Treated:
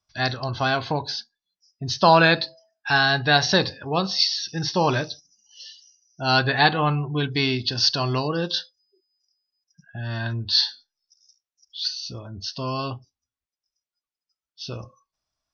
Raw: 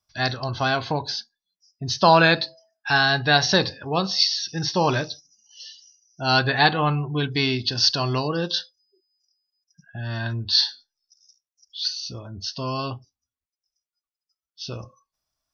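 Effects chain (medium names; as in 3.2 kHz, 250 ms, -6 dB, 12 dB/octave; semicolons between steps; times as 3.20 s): low-pass 6.6 kHz 12 dB/octave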